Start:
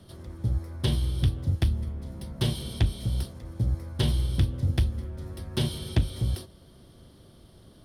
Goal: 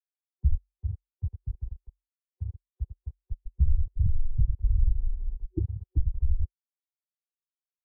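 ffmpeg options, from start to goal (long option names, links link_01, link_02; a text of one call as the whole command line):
ffmpeg -i in.wav -filter_complex "[0:a]adynamicsmooth=sensitivity=5.5:basefreq=1100,aecho=1:1:92|172|199|242|458:0.562|0.251|0.141|0.299|0.237,alimiter=limit=-17.5dB:level=0:latency=1:release=401,asettb=1/sr,asplit=3[link_01][link_02][link_03];[link_01]atrim=end=0.554[link_04];[link_02]atrim=start=0.55:end=3.3,asetpts=PTS-STARTPTS,afade=type=in:duration=0.004:curve=qsin,afade=type=out:start_time=2.746:duration=0.004:curve=qsin,highpass=140[link_05];[link_03]atrim=start=3.296[link_06];[link_04][link_05]acrossfade=duration=0.004:curve1=hsin:curve2=qsin[link_07];[link_07][link_06]acrossfade=duration=0.004:curve1=qsin:curve2=hsin,afftfilt=real='re*gte(hypot(re,im),0.282)':imag='im*gte(hypot(re,im),0.282)':win_size=1024:overlap=0.75,afreqshift=-47,superequalizer=7b=3.16:9b=3.55,volume=5.5dB" out.wav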